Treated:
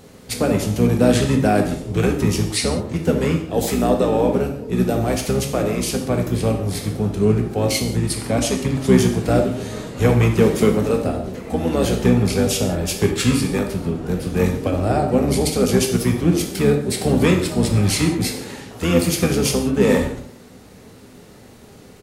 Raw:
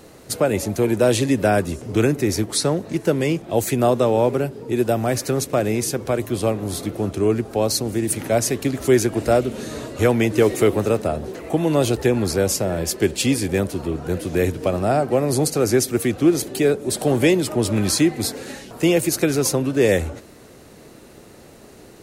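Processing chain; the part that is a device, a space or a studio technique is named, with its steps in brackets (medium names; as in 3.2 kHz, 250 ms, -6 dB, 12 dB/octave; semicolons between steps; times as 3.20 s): 7.89–8.96 s: low-pass 11 kHz 12 dB/octave; octave pedal (harmony voices -12 st -3 dB); tape echo 68 ms, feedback 68%, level -12.5 dB, low-pass 1.1 kHz; gated-style reverb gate 210 ms falling, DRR 2.5 dB; trim -3 dB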